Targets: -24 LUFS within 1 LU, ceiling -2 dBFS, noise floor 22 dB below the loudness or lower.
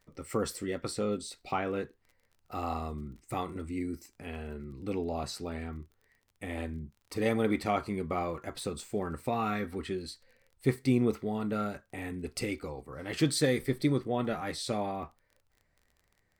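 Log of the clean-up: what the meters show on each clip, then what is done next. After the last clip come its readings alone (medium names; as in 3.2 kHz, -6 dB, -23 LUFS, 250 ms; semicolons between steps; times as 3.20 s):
tick rate 26 per s; loudness -34.0 LUFS; peak level -14.0 dBFS; loudness target -24.0 LUFS
-> de-click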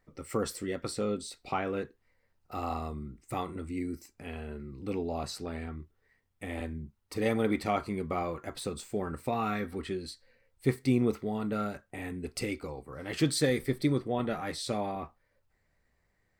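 tick rate 0.12 per s; loudness -34.0 LUFS; peak level -14.0 dBFS; loudness target -24.0 LUFS
-> trim +10 dB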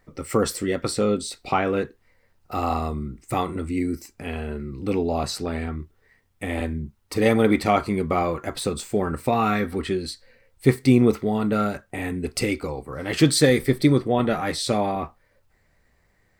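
loudness -24.0 LUFS; peak level -4.0 dBFS; noise floor -65 dBFS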